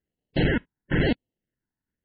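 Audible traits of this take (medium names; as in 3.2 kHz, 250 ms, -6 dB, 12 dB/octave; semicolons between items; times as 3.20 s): aliases and images of a low sample rate 1.2 kHz, jitter 0%; phasing stages 4, 1 Hz, lowest notch 550–1300 Hz; MP3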